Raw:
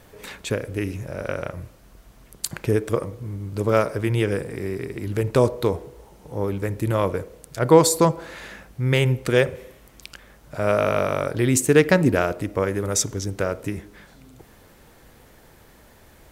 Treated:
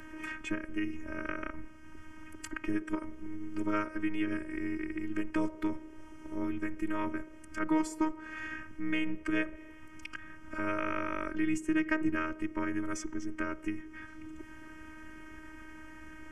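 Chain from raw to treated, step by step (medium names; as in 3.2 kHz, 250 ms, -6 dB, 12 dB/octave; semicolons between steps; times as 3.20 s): low-pass 4.4 kHz 12 dB/octave; static phaser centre 1.7 kHz, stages 4; in parallel at +1 dB: compression, threshold -36 dBFS, peak gain reduction 21.5 dB; on the sum: robot voice 331 Hz; formant-preserving pitch shift -1 st; three bands compressed up and down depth 40%; trim -5.5 dB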